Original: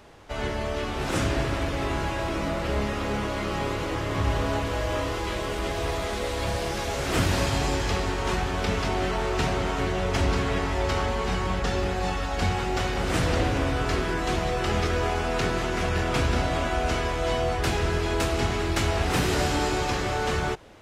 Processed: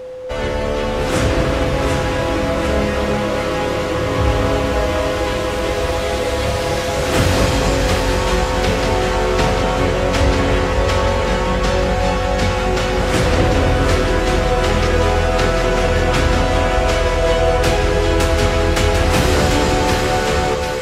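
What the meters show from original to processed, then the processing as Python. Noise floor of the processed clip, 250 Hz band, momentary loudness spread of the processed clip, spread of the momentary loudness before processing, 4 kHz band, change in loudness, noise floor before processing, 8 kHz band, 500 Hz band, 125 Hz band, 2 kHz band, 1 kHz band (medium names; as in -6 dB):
-20 dBFS, +9.0 dB, 4 LU, 4 LU, +9.0 dB, +10.0 dB, -30 dBFS, +9.0 dB, +11.5 dB, +9.0 dB, +9.0 dB, +9.0 dB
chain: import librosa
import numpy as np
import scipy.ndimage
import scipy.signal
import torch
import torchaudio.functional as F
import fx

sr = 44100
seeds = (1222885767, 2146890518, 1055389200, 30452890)

y = x + 10.0 ** (-35.0 / 20.0) * np.sin(2.0 * np.pi * 510.0 * np.arange(len(x)) / sr)
y = fx.echo_split(y, sr, split_hz=1400.0, low_ms=241, high_ms=745, feedback_pct=52, wet_db=-5)
y = y * 10.0 ** (7.5 / 20.0)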